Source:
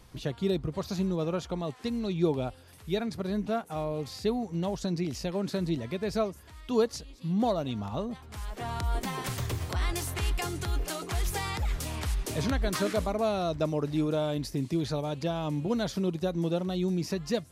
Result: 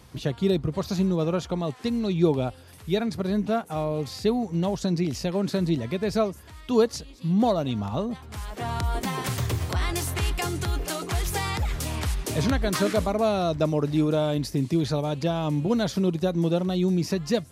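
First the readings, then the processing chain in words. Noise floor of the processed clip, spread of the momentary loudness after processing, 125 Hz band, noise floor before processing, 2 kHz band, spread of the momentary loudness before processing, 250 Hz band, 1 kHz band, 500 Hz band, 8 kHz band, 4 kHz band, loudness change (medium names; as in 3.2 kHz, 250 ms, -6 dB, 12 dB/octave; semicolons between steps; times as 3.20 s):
-47 dBFS, 6 LU, +5.5 dB, -52 dBFS, +4.5 dB, 5 LU, +5.5 dB, +4.5 dB, +5.0 dB, +4.5 dB, +4.5 dB, +5.0 dB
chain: high-pass 66 Hz; bass shelf 190 Hz +3 dB; trim +4.5 dB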